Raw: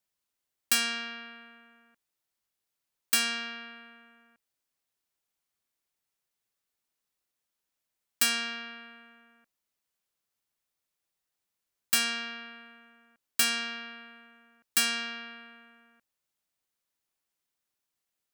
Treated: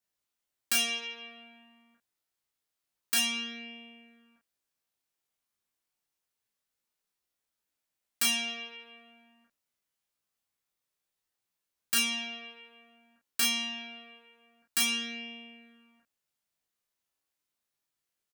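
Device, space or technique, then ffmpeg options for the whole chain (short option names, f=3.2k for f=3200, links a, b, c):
double-tracked vocal: -filter_complex "[0:a]asplit=2[a][b];[b]adelay=34,volume=-2.5dB[c];[a][c]amix=inputs=2:normalize=0,flanger=delay=17.5:depth=3:speed=0.26"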